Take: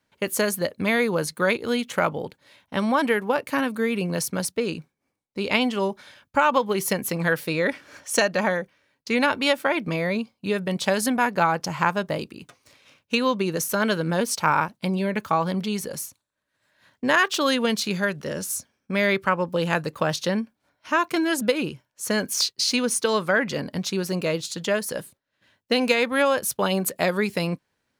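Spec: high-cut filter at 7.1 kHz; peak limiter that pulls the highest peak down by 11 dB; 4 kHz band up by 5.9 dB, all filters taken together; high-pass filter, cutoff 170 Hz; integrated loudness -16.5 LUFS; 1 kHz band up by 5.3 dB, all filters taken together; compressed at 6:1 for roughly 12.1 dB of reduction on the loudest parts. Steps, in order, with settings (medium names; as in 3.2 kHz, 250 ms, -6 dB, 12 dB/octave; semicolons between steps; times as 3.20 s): high-pass 170 Hz; low-pass 7.1 kHz; peaking EQ 1 kHz +6 dB; peaking EQ 4 kHz +7.5 dB; compression 6:1, threshold -24 dBFS; trim +14.5 dB; peak limiter -4 dBFS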